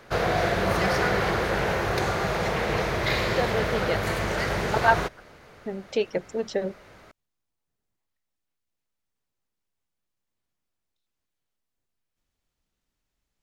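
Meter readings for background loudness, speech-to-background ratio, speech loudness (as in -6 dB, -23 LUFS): -25.5 LUFS, -3.0 dB, -28.5 LUFS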